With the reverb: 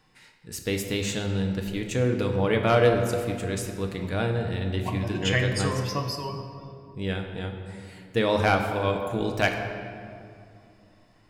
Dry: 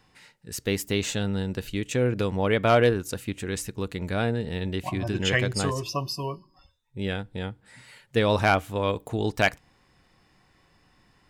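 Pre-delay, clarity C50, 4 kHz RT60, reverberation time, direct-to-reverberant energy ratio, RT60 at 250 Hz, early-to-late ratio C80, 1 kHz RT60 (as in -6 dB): 6 ms, 5.5 dB, 1.4 s, 2.6 s, 3.0 dB, 3.3 s, 6.5 dB, 2.4 s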